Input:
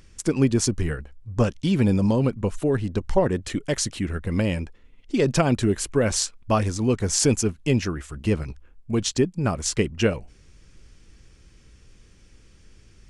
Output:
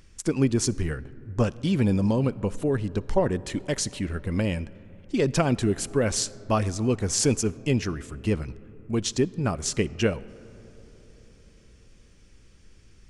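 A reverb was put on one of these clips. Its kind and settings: digital reverb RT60 4.3 s, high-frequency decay 0.3×, pre-delay 20 ms, DRR 19.5 dB; gain -2.5 dB

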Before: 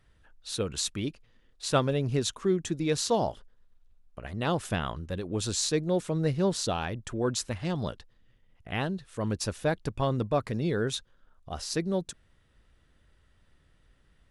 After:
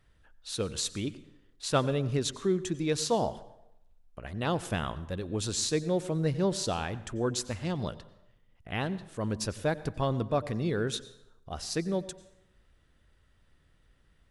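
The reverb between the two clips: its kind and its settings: plate-style reverb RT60 0.84 s, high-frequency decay 0.7×, pre-delay 80 ms, DRR 16.5 dB; gain -1.5 dB

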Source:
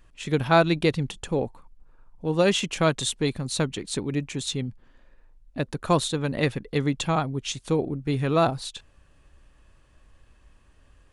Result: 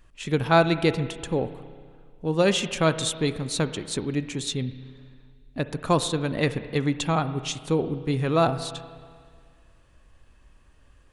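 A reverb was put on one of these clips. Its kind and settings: spring tank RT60 1.9 s, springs 31/60 ms, chirp 65 ms, DRR 12 dB

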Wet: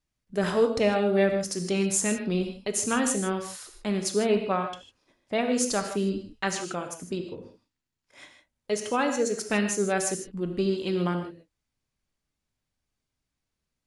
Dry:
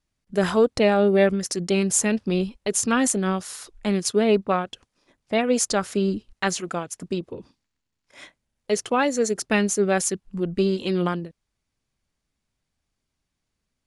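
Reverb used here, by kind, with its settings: non-linear reverb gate 0.18 s flat, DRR 5 dB; gain -5 dB

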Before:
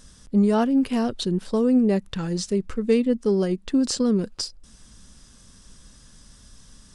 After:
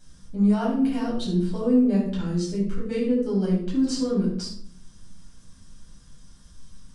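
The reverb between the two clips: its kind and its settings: shoebox room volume 870 m³, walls furnished, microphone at 7.9 m; gain -13.5 dB

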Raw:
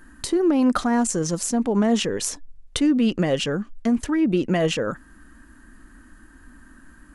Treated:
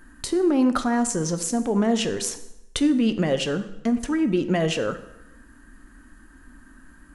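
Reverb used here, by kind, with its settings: plate-style reverb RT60 0.9 s, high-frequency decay 0.8×, DRR 9.5 dB; gain -1.5 dB

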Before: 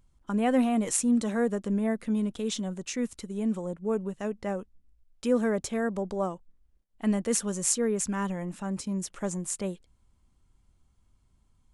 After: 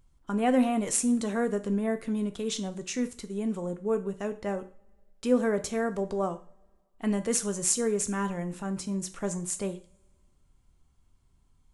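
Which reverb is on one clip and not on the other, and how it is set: two-slope reverb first 0.39 s, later 1.9 s, from -27 dB, DRR 8 dB

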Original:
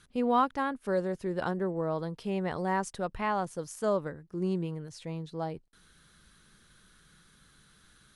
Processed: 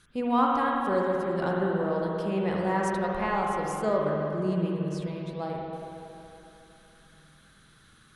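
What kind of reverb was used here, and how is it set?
spring tank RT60 3 s, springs 46/59 ms, chirp 70 ms, DRR -2.5 dB

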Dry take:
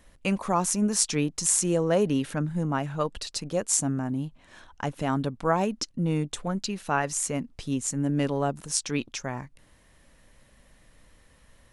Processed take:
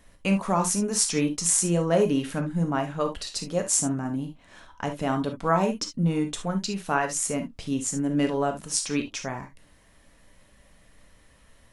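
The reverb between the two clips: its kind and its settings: non-linear reverb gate 90 ms flat, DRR 4.5 dB

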